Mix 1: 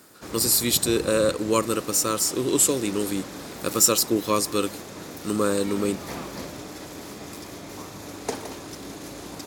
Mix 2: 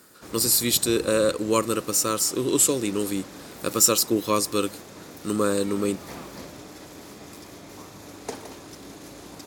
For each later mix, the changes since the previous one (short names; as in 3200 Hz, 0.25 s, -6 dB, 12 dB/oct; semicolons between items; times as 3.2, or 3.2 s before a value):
background -4.5 dB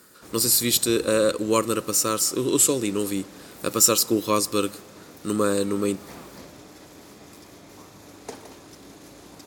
background -3.5 dB; reverb: on, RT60 1.6 s